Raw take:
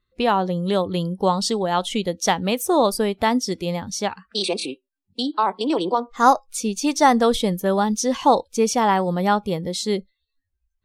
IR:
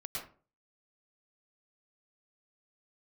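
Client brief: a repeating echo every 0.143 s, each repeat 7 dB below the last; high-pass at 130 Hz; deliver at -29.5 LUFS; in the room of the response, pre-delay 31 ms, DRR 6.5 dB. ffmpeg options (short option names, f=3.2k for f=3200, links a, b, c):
-filter_complex "[0:a]highpass=130,aecho=1:1:143|286|429|572|715:0.447|0.201|0.0905|0.0407|0.0183,asplit=2[a][b];[1:a]atrim=start_sample=2205,adelay=31[c];[b][c]afir=irnorm=-1:irlink=0,volume=-7dB[d];[a][d]amix=inputs=2:normalize=0,volume=-10dB"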